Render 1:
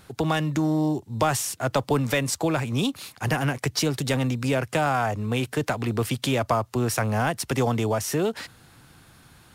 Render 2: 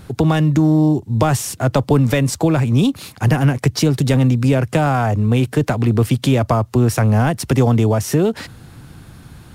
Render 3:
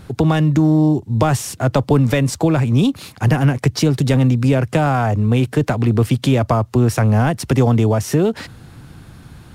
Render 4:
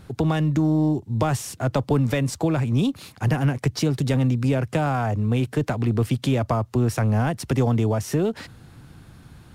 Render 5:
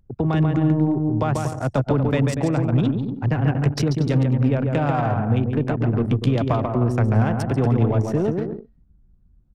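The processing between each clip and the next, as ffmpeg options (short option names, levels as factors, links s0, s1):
-filter_complex "[0:a]lowshelf=f=410:g=11.5,asplit=2[s0][s1];[s1]acompressor=threshold=0.0631:ratio=6,volume=0.794[s2];[s0][s2]amix=inputs=2:normalize=0"
-af "highshelf=f=8000:g=-4.5"
-af "aeval=exprs='0.841*(cos(1*acos(clip(val(0)/0.841,-1,1)))-cos(1*PI/2))+0.00841*(cos(6*acos(clip(val(0)/0.841,-1,1)))-cos(6*PI/2))':c=same,volume=0.473"
-af "aecho=1:1:140|238|306.6|354.6|388.2:0.631|0.398|0.251|0.158|0.1,anlmdn=398"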